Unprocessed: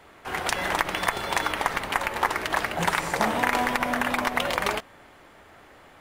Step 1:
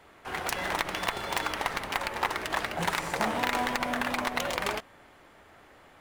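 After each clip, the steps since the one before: self-modulated delay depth 0.15 ms; trim -4 dB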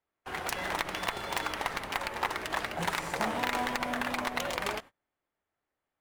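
gate -43 dBFS, range -30 dB; trim -2.5 dB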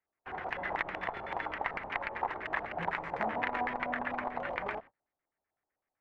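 LFO low-pass square 7.9 Hz 800–2000 Hz; trim -5.5 dB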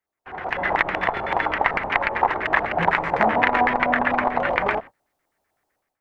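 level rider gain up to 12.5 dB; trim +2.5 dB

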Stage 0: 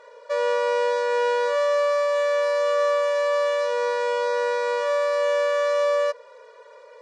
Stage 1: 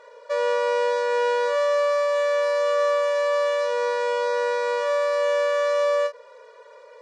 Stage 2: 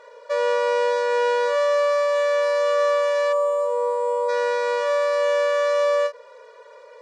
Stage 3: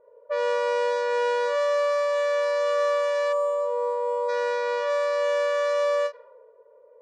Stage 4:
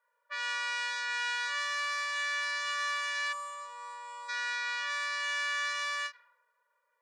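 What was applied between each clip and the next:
endings held to a fixed fall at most 310 dB/s
time-frequency box 3.33–4.29 s, 1.2–6.9 kHz -18 dB; trim +1.5 dB
level-controlled noise filter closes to 400 Hz, open at -16.5 dBFS; trim -3.5 dB
high-pass 1.5 kHz 24 dB/octave; trim +3 dB

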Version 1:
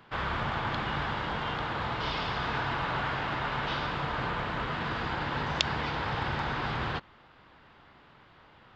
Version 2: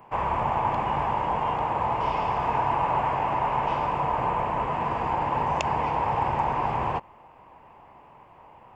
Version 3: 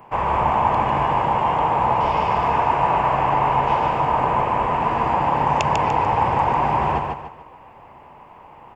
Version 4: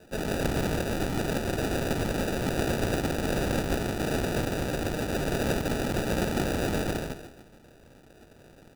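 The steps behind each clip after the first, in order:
FFT filter 290 Hz 0 dB, 980 Hz +11 dB, 1.4 kHz -9 dB, 2.6 kHz 0 dB, 3.8 kHz -20 dB, 8.4 kHz +6 dB; trim +1.5 dB
feedback delay 147 ms, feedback 35%, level -4 dB; trim +5 dB
spectral peaks clipped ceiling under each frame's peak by 28 dB; sample-and-hold 41×; trim -8.5 dB

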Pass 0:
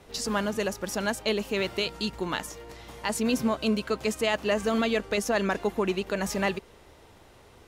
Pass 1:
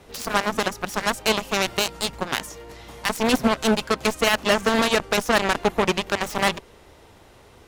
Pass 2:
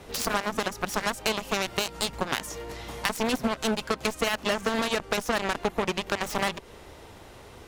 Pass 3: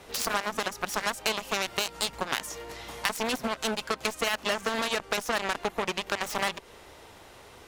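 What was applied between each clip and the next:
Chebyshev shaper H 7 -12 dB, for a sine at -14 dBFS; trim +6 dB
compression 5:1, threshold -26 dBFS, peak gain reduction 11.5 dB; trim +3 dB
bass shelf 400 Hz -8 dB

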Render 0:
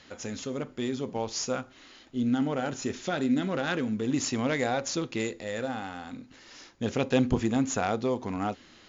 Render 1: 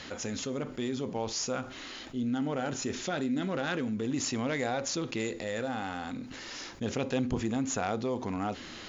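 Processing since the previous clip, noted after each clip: level flattener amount 50%; trim -7 dB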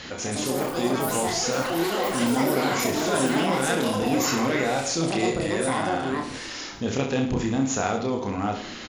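ever faster or slower copies 183 ms, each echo +6 st, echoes 3; reverse bouncing-ball echo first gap 30 ms, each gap 1.2×, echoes 5; trim +4.5 dB

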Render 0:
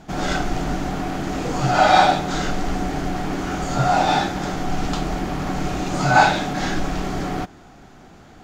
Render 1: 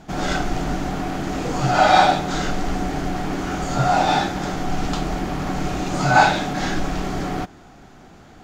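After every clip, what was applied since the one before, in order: no audible change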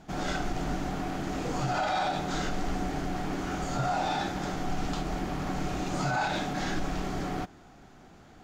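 peak limiter -13 dBFS, peak gain reduction 11 dB; trim -7.5 dB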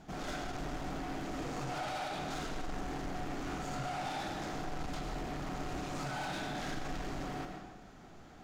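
saturation -35 dBFS, distortion -8 dB; reverberation RT60 1.1 s, pre-delay 60 ms, DRR 4 dB; trim -2.5 dB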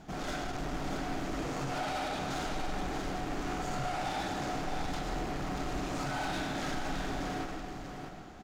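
delay 637 ms -6.5 dB; trim +3 dB

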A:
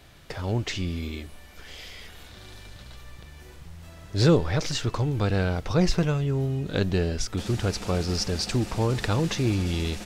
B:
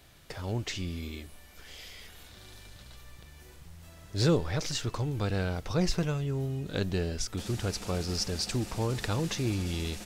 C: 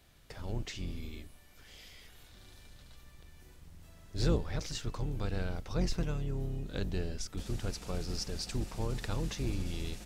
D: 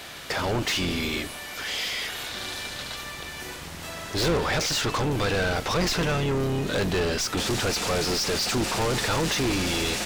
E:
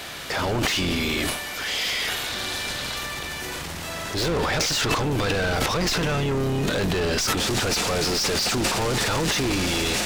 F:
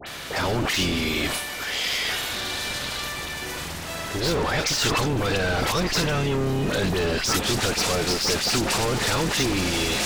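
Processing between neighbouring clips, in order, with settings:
treble shelf 6.5 kHz +8 dB; trim -6 dB
octave divider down 2 oct, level +3 dB; trim -7 dB
overdrive pedal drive 34 dB, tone 5.1 kHz, clips at -18 dBFS; trim +1.5 dB
compression, threshold -26 dBFS, peak gain reduction 6 dB; transient shaper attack -4 dB, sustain +12 dB; trim +4.5 dB
phase dispersion highs, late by 67 ms, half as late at 2 kHz

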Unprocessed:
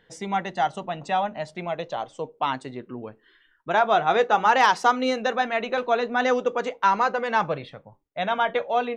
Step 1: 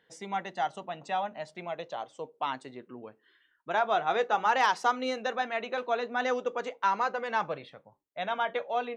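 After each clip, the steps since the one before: high-pass 250 Hz 6 dB/octave; trim -6.5 dB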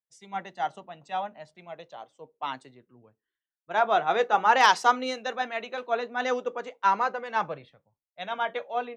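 three bands expanded up and down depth 100%; trim +1.5 dB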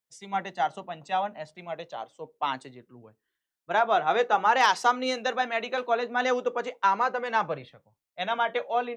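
compression 2:1, threshold -30 dBFS, peak gain reduction 9 dB; trim +6 dB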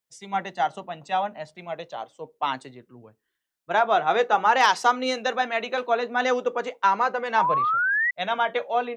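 painted sound rise, 7.36–8.11 s, 880–2000 Hz -25 dBFS; trim +2.5 dB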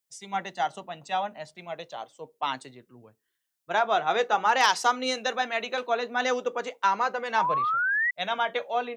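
treble shelf 3.6 kHz +8.5 dB; trim -4 dB

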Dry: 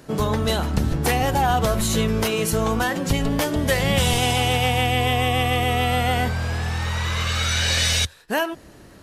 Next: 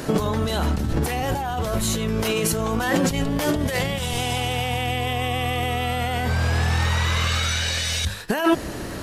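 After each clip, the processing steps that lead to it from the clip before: hum notches 50/100/150/200 Hz; compressor with a negative ratio -30 dBFS, ratio -1; trim +7 dB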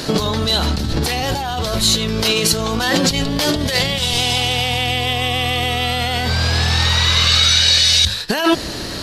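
peaking EQ 4.3 kHz +14.5 dB 0.98 oct; trim +3 dB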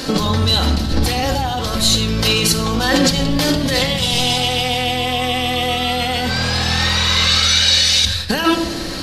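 simulated room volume 3400 m³, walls furnished, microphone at 2.1 m; trim -1 dB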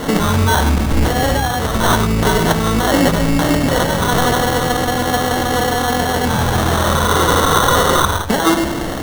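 in parallel at 0 dB: peak limiter -9 dBFS, peak gain reduction 7 dB; on the sum: sample-and-hold 18×; trim -3 dB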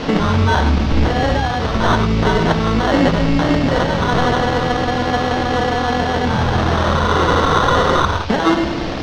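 band noise 2.2–5.9 kHz -31 dBFS; distance through air 180 m

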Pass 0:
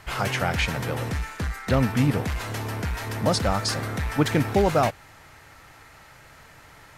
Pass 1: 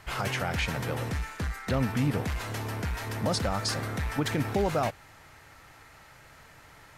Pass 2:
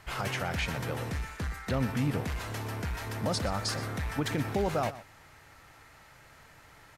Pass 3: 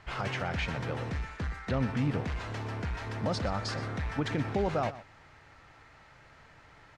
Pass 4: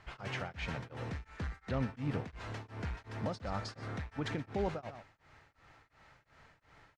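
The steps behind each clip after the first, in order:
peak limiter -14.5 dBFS, peak gain reduction 6.5 dB; trim -3.5 dB
delay 122 ms -15.5 dB; trim -2.5 dB
distance through air 110 m
tremolo of two beating tones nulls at 2.8 Hz; trim -4 dB

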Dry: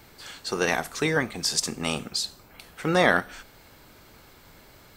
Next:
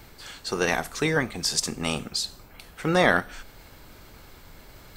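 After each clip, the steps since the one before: bass shelf 62 Hz +10.5 dB; reverse; upward compressor, threshold -42 dBFS; reverse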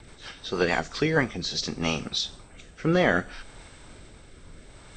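knee-point frequency compression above 2.7 kHz 1.5:1; rotary cabinet horn 6.3 Hz, later 0.65 Hz, at 0.63 s; trim +2.5 dB

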